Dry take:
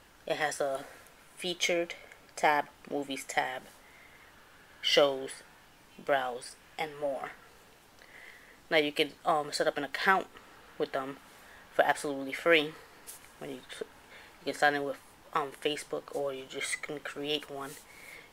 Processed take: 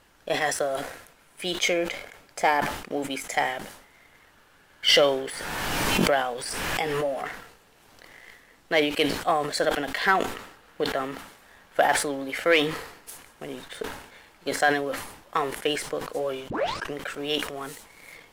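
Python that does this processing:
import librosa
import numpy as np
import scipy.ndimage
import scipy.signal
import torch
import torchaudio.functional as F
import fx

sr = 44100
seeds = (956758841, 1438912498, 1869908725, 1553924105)

y = fx.pre_swell(x, sr, db_per_s=21.0, at=(4.88, 8.18))
y = fx.edit(y, sr, fx.tape_start(start_s=16.5, length_s=0.44), tone=tone)
y = fx.leveller(y, sr, passes=1)
y = fx.sustainer(y, sr, db_per_s=77.0)
y = y * librosa.db_to_amplitude(1.0)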